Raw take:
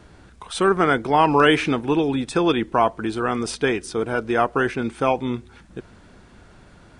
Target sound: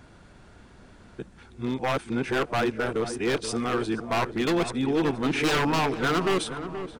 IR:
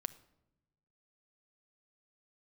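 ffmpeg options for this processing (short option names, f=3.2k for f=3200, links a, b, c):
-filter_complex "[0:a]areverse,acontrast=38,aeval=exprs='0.299*(abs(mod(val(0)/0.299+3,4)-2)-1)':c=same,asplit=2[a][b];[b]adelay=477,lowpass=f=1.4k:p=1,volume=-9.5dB,asplit=2[c][d];[d]adelay=477,lowpass=f=1.4k:p=1,volume=0.51,asplit=2[e][f];[f]adelay=477,lowpass=f=1.4k:p=1,volume=0.51,asplit=2[g][h];[h]adelay=477,lowpass=f=1.4k:p=1,volume=0.51,asplit=2[i][j];[j]adelay=477,lowpass=f=1.4k:p=1,volume=0.51,asplit=2[k][l];[l]adelay=477,lowpass=f=1.4k:p=1,volume=0.51[m];[c][e][g][i][k][m]amix=inputs=6:normalize=0[n];[a][n]amix=inputs=2:normalize=0,volume=-8.5dB"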